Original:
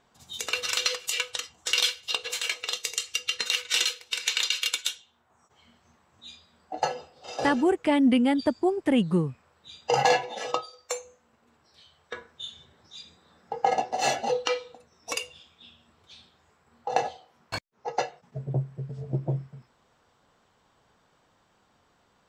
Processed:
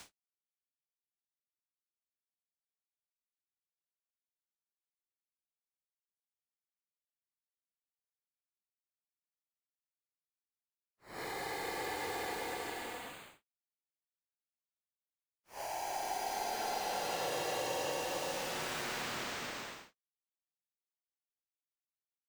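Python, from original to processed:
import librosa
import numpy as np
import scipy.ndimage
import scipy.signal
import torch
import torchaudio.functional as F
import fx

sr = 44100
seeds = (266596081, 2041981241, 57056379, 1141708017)

y = np.where(np.abs(x) >= 10.0 ** (-24.0 / 20.0), x, 0.0)
y = fx.transient(y, sr, attack_db=-10, sustain_db=4)
y = fx.paulstretch(y, sr, seeds[0], factor=43.0, window_s=0.05, from_s=17.6)
y = fx.band_squash(y, sr, depth_pct=100)
y = y * librosa.db_to_amplitude(-4.5)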